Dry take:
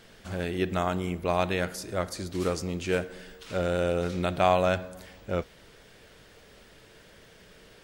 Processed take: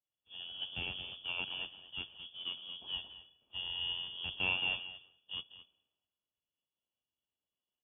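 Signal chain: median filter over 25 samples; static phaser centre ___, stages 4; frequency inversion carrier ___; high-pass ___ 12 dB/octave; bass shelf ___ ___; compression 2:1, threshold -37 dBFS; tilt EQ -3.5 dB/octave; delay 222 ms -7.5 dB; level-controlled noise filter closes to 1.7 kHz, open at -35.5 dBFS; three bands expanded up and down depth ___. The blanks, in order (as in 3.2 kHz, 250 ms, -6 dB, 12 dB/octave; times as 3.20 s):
550 Hz, 3.4 kHz, 68 Hz, 190 Hz, -5 dB, 100%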